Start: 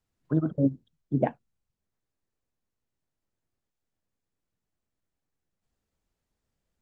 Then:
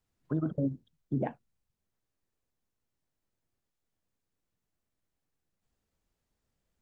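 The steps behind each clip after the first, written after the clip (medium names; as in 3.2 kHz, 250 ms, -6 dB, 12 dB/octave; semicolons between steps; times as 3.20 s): peak limiter -21.5 dBFS, peak gain reduction 10.5 dB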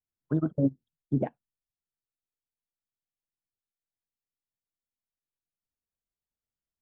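upward expansion 2.5:1, over -43 dBFS; trim +7 dB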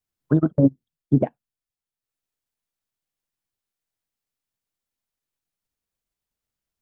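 transient shaper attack +3 dB, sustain -6 dB; trim +7 dB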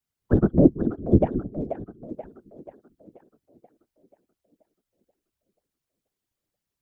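two-band feedback delay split 320 Hz, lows 221 ms, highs 483 ms, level -9 dB; whisper effect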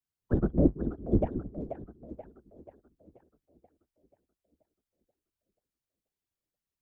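octave divider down 2 oct, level -4 dB; trim -8 dB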